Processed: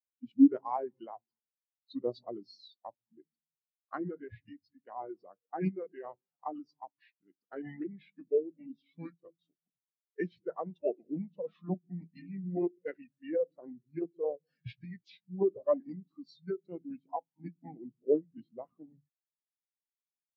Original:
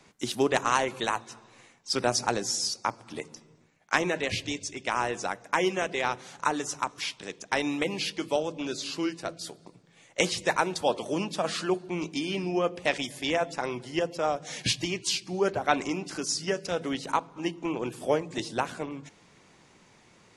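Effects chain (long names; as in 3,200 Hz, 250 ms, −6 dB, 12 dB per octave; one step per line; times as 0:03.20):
high-shelf EQ 6,400 Hz −6 dB
formants moved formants −4 semitones
every bin expanded away from the loudest bin 2.5 to 1
level −4.5 dB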